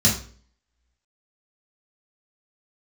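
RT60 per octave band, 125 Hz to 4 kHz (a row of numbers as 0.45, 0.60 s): 0.50, 0.50, 0.50, 0.40, 0.40, 0.40 s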